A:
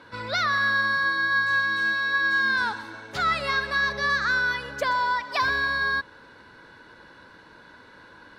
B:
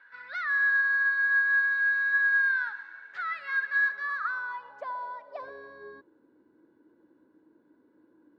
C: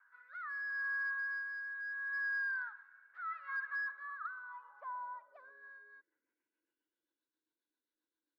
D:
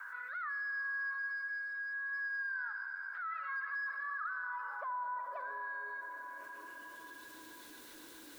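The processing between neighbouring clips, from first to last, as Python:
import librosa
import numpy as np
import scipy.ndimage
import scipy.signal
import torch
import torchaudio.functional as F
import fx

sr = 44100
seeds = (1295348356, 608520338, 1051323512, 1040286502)

y1 = fx.filter_sweep_bandpass(x, sr, from_hz=1700.0, to_hz=310.0, start_s=3.83, end_s=6.19, q=5.7)
y2 = np.clip(y1, -10.0 ** (-24.5 / 20.0), 10.0 ** (-24.5 / 20.0))
y2 = fx.filter_sweep_bandpass(y2, sr, from_hz=1200.0, to_hz=3800.0, start_s=5.19, end_s=7.24, q=4.5)
y2 = fx.rotary_switch(y2, sr, hz=0.75, then_hz=7.5, switch_at_s=5.35)
y3 = fx.rider(y2, sr, range_db=4, speed_s=2.0)
y3 = fx.rev_plate(y3, sr, seeds[0], rt60_s=3.0, hf_ratio=0.95, predelay_ms=0, drr_db=9.5)
y3 = fx.env_flatten(y3, sr, amount_pct=70)
y3 = y3 * 10.0 ** (-2.5 / 20.0)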